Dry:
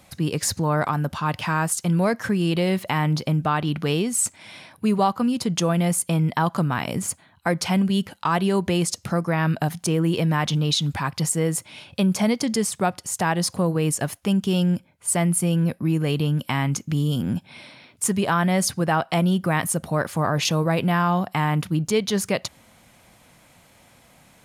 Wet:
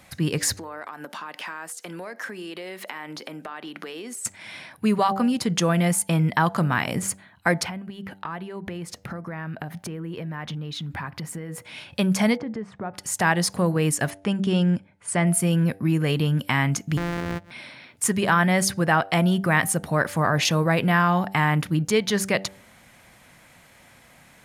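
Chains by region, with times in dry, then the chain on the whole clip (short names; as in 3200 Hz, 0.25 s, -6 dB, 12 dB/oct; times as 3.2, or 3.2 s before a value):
0.57–4.25 HPF 270 Hz 24 dB/oct + compressor 8:1, threshold -33 dBFS
7.63–11.65 bell 7400 Hz -12.5 dB 2.1 oct + compressor 12:1, threshold -29 dBFS
12.37–12.94 LPF 1300 Hz + compressor 3:1, threshold -30 dBFS
14.1–15.27 steep low-pass 11000 Hz 72 dB/oct + high shelf 4200 Hz -8.5 dB
16.97–17.51 sample sorter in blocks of 256 samples + compressor 4:1, threshold -25 dBFS + high shelf 4700 Hz -11.5 dB
whole clip: bell 1800 Hz +6.5 dB 0.76 oct; de-hum 97 Hz, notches 9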